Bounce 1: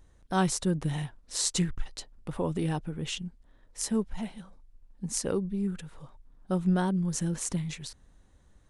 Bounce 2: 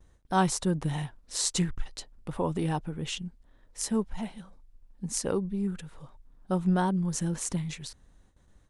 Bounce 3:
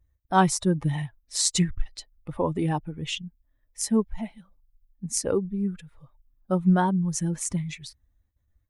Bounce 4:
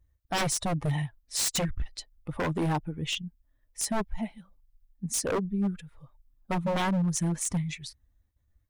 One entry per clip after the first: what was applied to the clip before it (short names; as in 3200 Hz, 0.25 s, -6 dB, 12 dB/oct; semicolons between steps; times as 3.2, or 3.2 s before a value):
gate with hold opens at -50 dBFS; dynamic EQ 910 Hz, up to +5 dB, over -47 dBFS, Q 1.7
per-bin expansion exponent 1.5; gain +6.5 dB
wavefolder -22 dBFS